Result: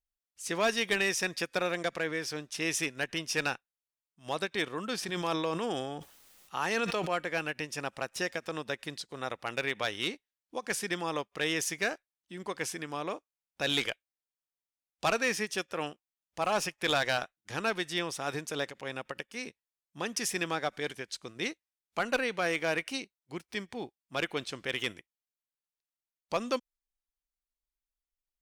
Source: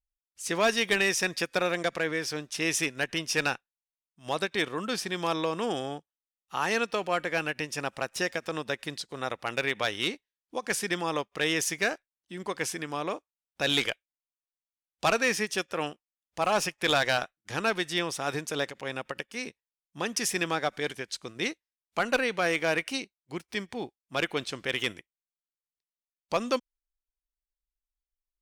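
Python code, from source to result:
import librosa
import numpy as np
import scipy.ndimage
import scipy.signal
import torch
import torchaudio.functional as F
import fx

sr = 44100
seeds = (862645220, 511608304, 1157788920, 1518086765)

y = fx.sustainer(x, sr, db_per_s=34.0, at=(5.02, 7.09), fade=0.02)
y = y * 10.0 ** (-3.5 / 20.0)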